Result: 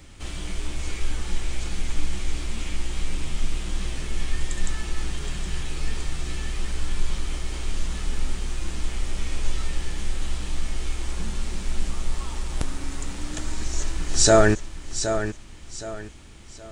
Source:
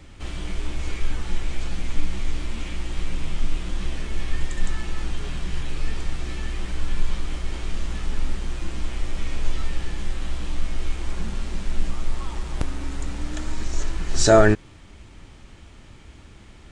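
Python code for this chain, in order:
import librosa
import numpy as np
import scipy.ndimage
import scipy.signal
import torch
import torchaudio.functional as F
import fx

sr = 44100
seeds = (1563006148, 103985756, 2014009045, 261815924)

p1 = fx.high_shelf(x, sr, hz=5500.0, db=11.5)
p2 = p1 + fx.echo_feedback(p1, sr, ms=769, feedback_pct=33, wet_db=-9.5, dry=0)
y = p2 * 10.0 ** (-2.0 / 20.0)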